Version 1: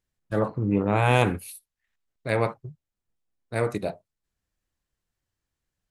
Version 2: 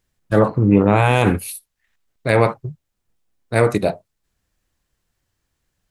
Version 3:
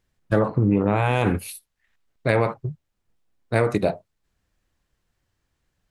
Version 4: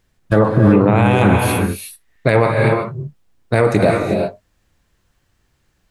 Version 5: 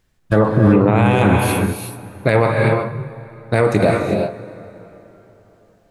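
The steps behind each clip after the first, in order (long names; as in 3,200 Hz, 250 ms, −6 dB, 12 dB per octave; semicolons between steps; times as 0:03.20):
boost into a limiter +11.5 dB; level −1 dB
high-shelf EQ 5,800 Hz −8 dB; downward compressor 6 to 1, threshold −15 dBFS, peak gain reduction 8 dB
reverb whose tail is shaped and stops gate 400 ms rising, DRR 3.5 dB; boost into a limiter +10 dB; level −1 dB
dense smooth reverb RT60 3.8 s, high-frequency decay 0.65×, DRR 14 dB; level −1 dB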